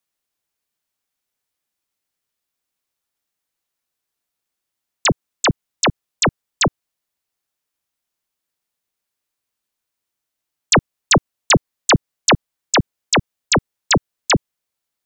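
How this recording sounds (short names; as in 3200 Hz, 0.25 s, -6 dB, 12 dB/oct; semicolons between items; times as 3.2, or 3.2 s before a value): noise floor -82 dBFS; spectral tilt -3.0 dB/oct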